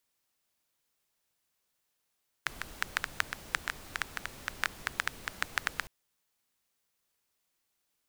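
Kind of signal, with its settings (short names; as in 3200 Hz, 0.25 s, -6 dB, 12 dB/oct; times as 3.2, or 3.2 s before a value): rain from filtered ticks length 3.41 s, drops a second 7.4, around 1600 Hz, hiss -10 dB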